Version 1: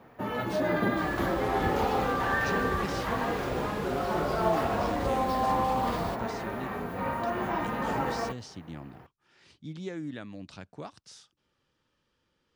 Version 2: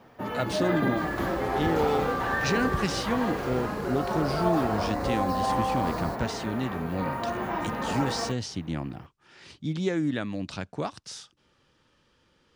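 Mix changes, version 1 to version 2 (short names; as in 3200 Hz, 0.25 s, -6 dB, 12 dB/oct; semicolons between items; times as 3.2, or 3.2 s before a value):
speech +10.0 dB; second sound: add elliptic band-stop 1800–4000 Hz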